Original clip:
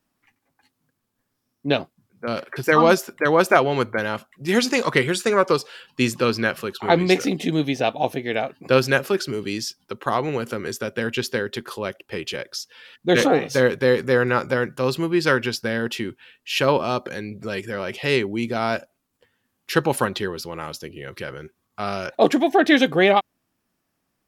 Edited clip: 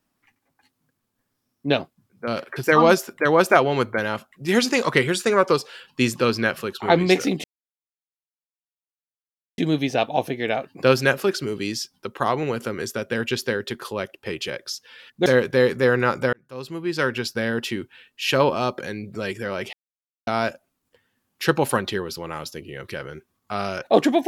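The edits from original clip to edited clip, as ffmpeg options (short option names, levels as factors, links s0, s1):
-filter_complex "[0:a]asplit=6[s0][s1][s2][s3][s4][s5];[s0]atrim=end=7.44,asetpts=PTS-STARTPTS,afade=t=out:st=7.436:d=0.004:c=hsin,apad=pad_dur=2.14[s6];[s1]atrim=start=7.44:end=13.122,asetpts=PTS-STARTPTS,afade=t=in:d=0.004:c=hsin[s7];[s2]atrim=start=13.538:end=14.61,asetpts=PTS-STARTPTS,afade=t=out:st=1.068:d=0.004:c=hsin[s8];[s3]atrim=start=14.61:end=18.01,asetpts=PTS-STARTPTS,afade=t=in:d=1.09,afade=t=out:st=3.396:d=0.004:c=hsin[s9];[s4]atrim=start=18.01:end=18.55,asetpts=PTS-STARTPTS,volume=0[s10];[s5]atrim=start=18.55,asetpts=PTS-STARTPTS,afade=t=in:d=0.004:c=hsin[s11];[s6][s7]concat=n=2:v=0:a=1[s12];[s8][s9][s10][s11]concat=n=4:v=0:a=1[s13];[s12][s13]acrossfade=d=0.004:c1=hsin:c2=hsin"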